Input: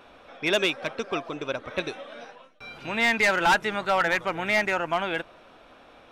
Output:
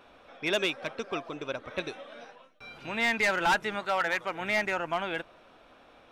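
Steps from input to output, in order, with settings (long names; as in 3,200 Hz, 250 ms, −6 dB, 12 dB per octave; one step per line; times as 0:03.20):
0:03.80–0:04.41: low-shelf EQ 200 Hz −10 dB
level −4.5 dB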